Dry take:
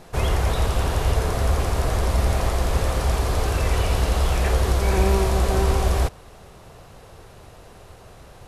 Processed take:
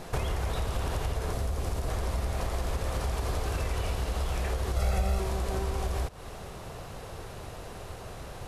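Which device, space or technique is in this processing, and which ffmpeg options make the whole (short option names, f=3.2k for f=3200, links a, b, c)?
serial compression, leveller first: -filter_complex "[0:a]acompressor=threshold=-23dB:ratio=3,acompressor=threshold=-31dB:ratio=5,asettb=1/sr,asplit=3[a][b][c];[a]atrim=end=1.324[d];[b]atrim=start=1.32:end=1.88,asetpts=PTS-STARTPTS,afade=t=in:d=0.004:c=qsin,afade=t=out:st=0.556:d=0.004:c=qsin,equalizer=f=1.5k:t=o:w=2.5:g=-4.5[e];[c]atrim=start=1.876[f];[d][e]acrossfade=d=0.004:c1=hsin:c2=qsin[g];[g][f]acrossfade=d=0.004:c1=qsin:c2=hsin,asettb=1/sr,asplit=3[h][i][j];[h]atrim=end=4.764[k];[i]atrim=start=4.76:end=5.2,asetpts=PTS-STARTPTS,afade=t=in:d=0.004:c=qsin,afade=t=out:st=0.436:d=0.004:c=qsin,aecho=1:1:1.5:0.82,atrim=end_sample=19404[l];[j]atrim=start=5.196[m];[k][l]acrossfade=d=0.004:c1=hsin:c2=qsin[n];[n][m]acrossfade=d=0.004:c1=qsin:c2=hsin,volume=3.5dB"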